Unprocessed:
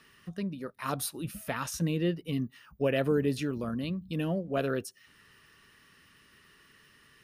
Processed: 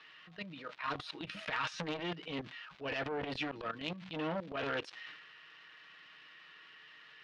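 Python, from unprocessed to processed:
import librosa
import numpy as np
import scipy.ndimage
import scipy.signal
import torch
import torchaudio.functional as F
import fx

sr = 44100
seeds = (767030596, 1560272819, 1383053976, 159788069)

y = x + 0.71 * np.pad(x, (int(6.4 * sr / 1000.0), 0))[:len(x)]
y = fx.dmg_crackle(y, sr, seeds[0], per_s=470.0, level_db=-48.0)
y = fx.highpass(y, sr, hz=1500.0, slope=6)
y = fx.level_steps(y, sr, step_db=23)
y = fx.transient(y, sr, attack_db=-11, sustain_db=8)
y = scipy.signal.sosfilt(scipy.signal.butter(4, 3700.0, 'lowpass', fs=sr, output='sos'), y)
y = fx.transformer_sat(y, sr, knee_hz=1500.0)
y = F.gain(torch.from_numpy(y), 14.0).numpy()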